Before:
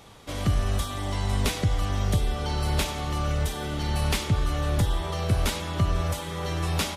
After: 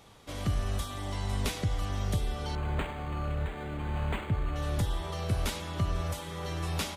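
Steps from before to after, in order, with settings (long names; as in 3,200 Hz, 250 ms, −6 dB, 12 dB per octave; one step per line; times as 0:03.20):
0:02.55–0:04.56: linearly interpolated sample-rate reduction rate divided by 8×
level −6 dB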